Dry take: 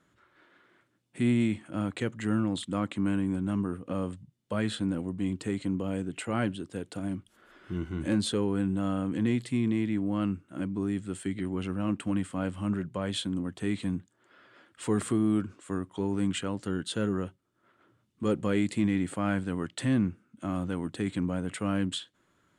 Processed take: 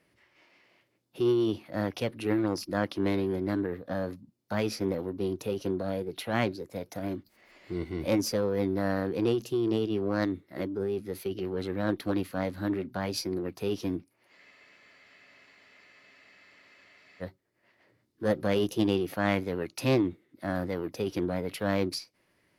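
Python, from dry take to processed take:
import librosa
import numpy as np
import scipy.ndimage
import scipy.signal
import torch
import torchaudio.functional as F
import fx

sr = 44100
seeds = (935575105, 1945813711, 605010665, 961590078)

y = fx.formant_shift(x, sr, semitones=6)
y = fx.cheby_harmonics(y, sr, harmonics=(3, 6, 8), levels_db=(-17, -34, -34), full_scale_db=-14.0)
y = fx.spec_freeze(y, sr, seeds[0], at_s=14.4, hold_s=2.82)
y = F.gain(torch.from_numpy(y), 4.0).numpy()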